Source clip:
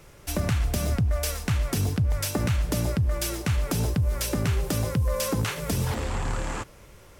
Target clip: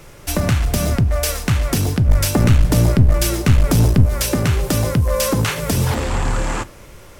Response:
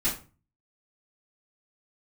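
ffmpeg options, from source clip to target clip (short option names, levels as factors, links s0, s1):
-filter_complex "[0:a]asettb=1/sr,asplit=3[s0][s1][s2];[s0]atrim=end=2.074[s3];[s1]atrim=start=2.07:end=4.06,asetpts=PTS-STARTPTS,afade=t=in:d=0.004:c=qsin,afade=t=out:st=1.986:d=0.004:c=qsin,lowshelf=f=210:g=7[s4];[s2]atrim=start=4.056[s5];[s3][s4]acrossfade=d=0.004:c1=hsin:c2=qsin[s6];[s6][s5]acrossfade=d=0.004:c1=qsin:c2=hsin,aeval=exprs='clip(val(0),-1,0.0944)':c=same,asplit=2[s7][s8];[1:a]atrim=start_sample=2205[s9];[s8][s9]afir=irnorm=-1:irlink=0,volume=0.0596[s10];[s7][s10]amix=inputs=2:normalize=0,volume=2.66"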